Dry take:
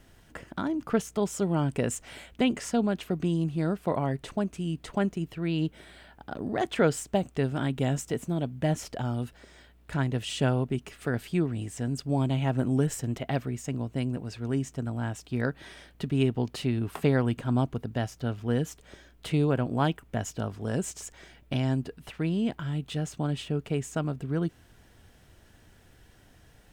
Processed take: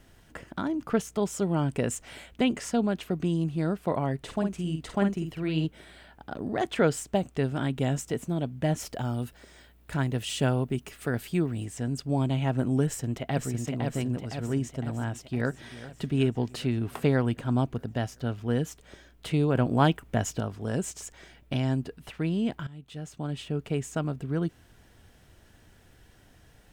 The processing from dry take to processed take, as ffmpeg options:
-filter_complex "[0:a]asettb=1/sr,asplit=3[a][b][c];[a]atrim=end=4.224[d];[b]atrim=start=4.22:end=5.65,asetpts=PTS-STARTPTS,afade=t=in:d=0.004:c=qsin,afade=t=out:st=1.426:d=0.004:c=qsin,asplit=2[e][f];[f]adelay=50,volume=-6dB[g];[e][g]amix=inputs=2:normalize=0,atrim=end_sample=63063[h];[c]atrim=start=5.646[i];[d][h]acrossfade=d=0.004:c1=hsin:c2=qsin[j];[j][i]acrossfade=d=0.004:c1=qsin:c2=hsin,asettb=1/sr,asplit=3[k][l][m];[k]atrim=end=8.804[n];[l]atrim=start=8.8:end=11.65,asetpts=PTS-STARTPTS,afade=t=in:d=0.004:c=qsin,afade=t=out:st=2.846:d=0.004:c=qsin,highshelf=f=11k:g=11.5[o];[m]atrim=start=11.646[p];[n][o]acrossfade=d=0.004:c1=hsin:c2=qsin[q];[q][p]acrossfade=d=0.004:c1=qsin:c2=hsin,asplit=2[r][s];[s]afade=t=in:st=12.85:d=0.01,afade=t=out:st=13.51:d=0.01,aecho=0:1:510|1020|1530|2040|2550|3060|3570|4080|4590:0.630957|0.378574|0.227145|0.136287|0.0817721|0.0490632|0.0294379|0.0176628|0.0105977[t];[r][t]amix=inputs=2:normalize=0,asplit=2[u][v];[v]afade=t=in:st=15.1:d=0.01,afade=t=out:st=15.71:d=0.01,aecho=0:1:390|780|1170|1560|1950|2340|2730|3120:0.158489|0.110943|0.0776598|0.0543618|0.0380533|0.0266373|0.0186461|0.0130523[w];[u][w]amix=inputs=2:normalize=0,asplit=4[x][y][z][aa];[x]atrim=end=19.552[ab];[y]atrim=start=19.548:end=20.402,asetpts=PTS-STARTPTS,volume=4dB[ac];[z]atrim=start=20.398:end=22.67,asetpts=PTS-STARTPTS,afade=t=out:st=2.268:d=0.004:c=hsin:silence=0.133352[ad];[aa]atrim=start=22.67,asetpts=PTS-STARTPTS,afade=t=in:d=1.01:silence=0.133352[ae];[ab][ac]acrossfade=d=0.004:c1=hsin:c2=hsin[af];[ad][ae]concat=n=2:v=0:a=1[ag];[af][ag]acrossfade=d=0.004:c1=hsin:c2=hsin"

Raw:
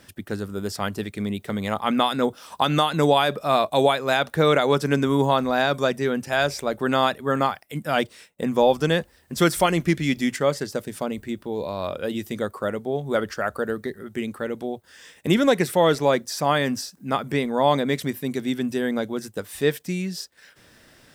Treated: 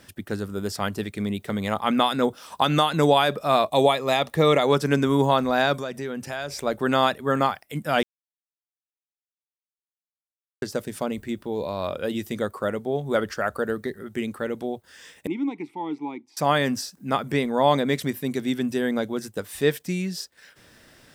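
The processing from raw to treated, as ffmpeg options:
-filter_complex "[0:a]asettb=1/sr,asplit=3[a][b][c];[a]atrim=end=3.664[d];[b]atrim=start=3.66:end=4.63,asetpts=PTS-STARTPTS,afade=t=in:d=0.004:c=qsin,afade=t=out:st=0.966:d=0.004:c=qsin,asuperstop=centerf=1500:order=4:qfactor=5.1[e];[c]atrim=start=4.626[f];[d][e]acrossfade=d=0.004:c1=hsin:c2=qsin[g];[g][f]acrossfade=d=0.004:c1=qsin:c2=hsin,asettb=1/sr,asplit=3[h][i][j];[h]atrim=end=5.774[k];[i]atrim=start=5.77:end=6.62,asetpts=PTS-STARTPTS,afade=t=in:d=0.004:c=qsin,afade=t=out:st=0.846:d=0.004:c=qsin,acompressor=threshold=-29dB:ratio=3:attack=3.2:release=140:knee=1:detection=peak[l];[j]atrim=start=6.616[m];[k][l]acrossfade=d=0.004:c1=hsin:c2=qsin[n];[n][m]acrossfade=d=0.004:c1=qsin:c2=hsin,asettb=1/sr,asplit=3[o][p][q];[o]atrim=end=15.274[r];[p]atrim=start=15.27:end=16.37,asetpts=PTS-STARTPTS,afade=t=in:d=0.004:c=qsin,afade=t=out:st=1.096:d=0.004:c=qsin,asplit=3[s][t][u];[s]bandpass=f=300:t=q:w=8,volume=0dB[v];[t]bandpass=f=870:t=q:w=8,volume=-6dB[w];[u]bandpass=f=2.24k:t=q:w=8,volume=-9dB[x];[v][w][x]amix=inputs=3:normalize=0[y];[q]atrim=start=16.366[z];[r][y]acrossfade=d=0.004:c1=hsin:c2=qsin[aa];[aa][z]acrossfade=d=0.004:c1=qsin:c2=hsin,asplit=3[ab][ac][ad];[ab]atrim=end=8.03,asetpts=PTS-STARTPTS,afade=t=out:st=8.026:d=0.004:c=hsin[ae];[ac]atrim=start=8.03:end=10.62,asetpts=PTS-STARTPTS,volume=0[af];[ad]atrim=start=10.62,asetpts=PTS-STARTPTS,afade=t=in:d=0.004:c=hsin[ag];[ae][af][ag]concat=n=3:v=0:a=1"

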